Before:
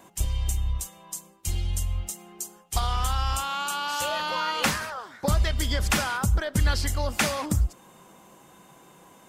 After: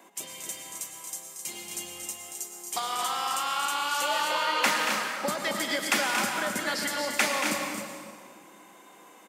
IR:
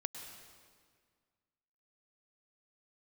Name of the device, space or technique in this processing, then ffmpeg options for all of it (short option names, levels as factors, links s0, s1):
stadium PA: -filter_complex "[0:a]highpass=93,highpass=f=240:w=0.5412,highpass=f=240:w=1.3066,equalizer=f=2100:t=o:w=0.4:g=5.5,aecho=1:1:230.3|262.4:0.398|0.447[s0];[1:a]atrim=start_sample=2205[s1];[s0][s1]afir=irnorm=-1:irlink=0"